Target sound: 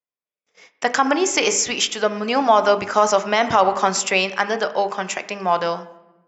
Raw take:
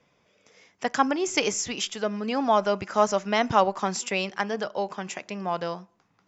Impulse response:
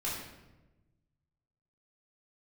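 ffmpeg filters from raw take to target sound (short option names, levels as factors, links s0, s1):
-filter_complex "[0:a]bandreject=f=50:t=h:w=6,bandreject=f=100:t=h:w=6,bandreject=f=150:t=h:w=6,bandreject=f=200:t=h:w=6,bandreject=f=250:t=h:w=6,bandreject=f=300:t=h:w=6,bandreject=f=350:t=h:w=6,bandreject=f=400:t=h:w=6,bandreject=f=450:t=h:w=6,bandreject=f=500:t=h:w=6,agate=range=0.00794:threshold=0.00178:ratio=16:detection=peak,lowshelf=f=230:g=-11,asplit=2[s0][s1];[1:a]atrim=start_sample=2205,lowpass=3000,lowshelf=f=190:g=-9.5[s2];[s1][s2]afir=irnorm=-1:irlink=0,volume=0.2[s3];[s0][s3]amix=inputs=2:normalize=0,alimiter=level_in=4.47:limit=0.891:release=50:level=0:latency=1,volume=0.668"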